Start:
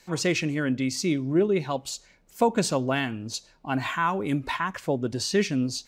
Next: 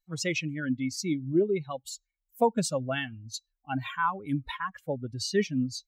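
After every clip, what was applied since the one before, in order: expander on every frequency bin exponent 2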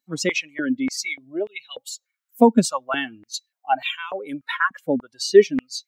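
step-sequenced high-pass 3.4 Hz 250–2800 Hz; trim +6 dB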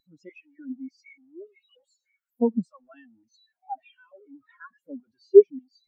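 jump at every zero crossing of -22 dBFS; spectral contrast expander 2.5:1; trim -1 dB

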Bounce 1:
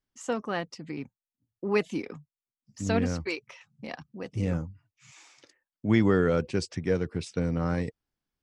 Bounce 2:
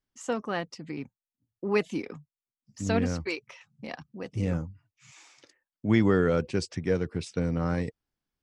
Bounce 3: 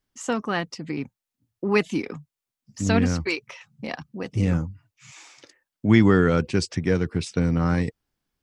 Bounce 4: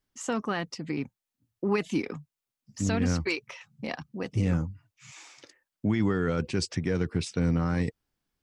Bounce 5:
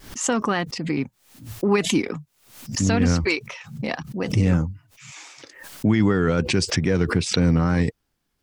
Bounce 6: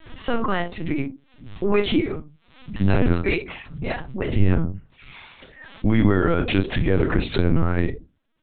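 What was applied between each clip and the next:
no audible change
dynamic bell 540 Hz, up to -6 dB, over -40 dBFS, Q 1.7; trim +7 dB
peak limiter -15 dBFS, peak gain reduction 11 dB; trim -2 dB
vibrato 3.8 Hz 43 cents; swell ahead of each attack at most 100 dB/s; trim +7 dB
on a send at -7 dB: reverberation RT60 0.20 s, pre-delay 29 ms; on the sum: LPC vocoder at 8 kHz pitch kept

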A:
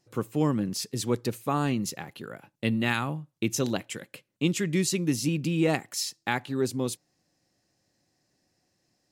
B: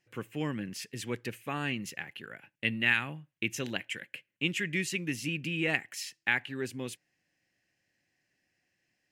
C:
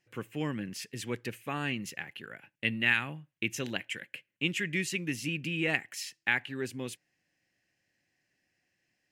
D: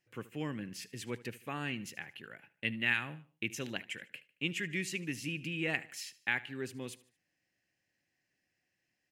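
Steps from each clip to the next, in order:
high-order bell 2.2 kHz +13.5 dB 1.2 oct; trim -9 dB
no audible change
feedback delay 75 ms, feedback 41%, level -19 dB; trim -4.5 dB

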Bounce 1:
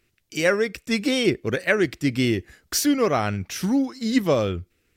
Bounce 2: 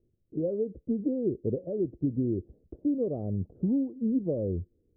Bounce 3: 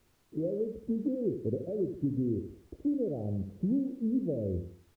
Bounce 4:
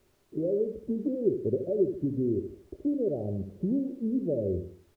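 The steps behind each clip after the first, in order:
compression, threshold -24 dBFS, peak gain reduction 10 dB; steep low-pass 550 Hz 36 dB/octave
low-pass that closes with the level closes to 660 Hz; added noise pink -68 dBFS; feedback delay 75 ms, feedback 38%, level -8.5 dB; trim -2.5 dB
small resonant body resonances 390/580 Hz, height 9 dB, ringing for 45 ms

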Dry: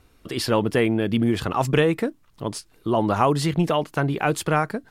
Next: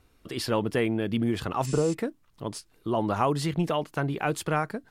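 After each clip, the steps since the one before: spectral replace 1.69–1.91 s, 1.5–10 kHz before; trim -5.5 dB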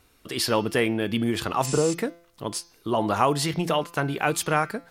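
tilt EQ +1.5 dB/octave; de-hum 170.5 Hz, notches 38; trim +4.5 dB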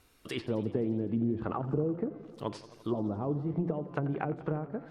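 low-pass that closes with the level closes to 360 Hz, closed at -21 dBFS; modulated delay 86 ms, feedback 76%, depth 133 cents, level -16.5 dB; trim -4 dB

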